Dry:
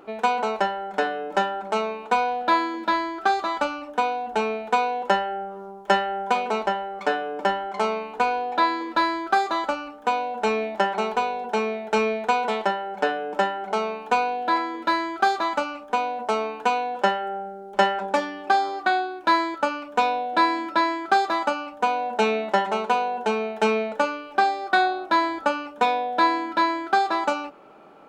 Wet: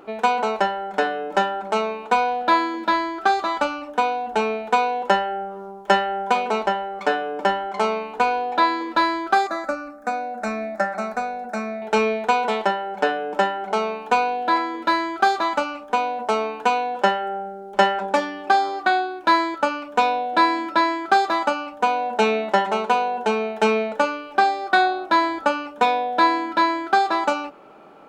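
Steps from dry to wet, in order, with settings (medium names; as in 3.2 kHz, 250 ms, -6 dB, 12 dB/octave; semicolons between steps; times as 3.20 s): 9.47–11.82 s: static phaser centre 620 Hz, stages 8; trim +2.5 dB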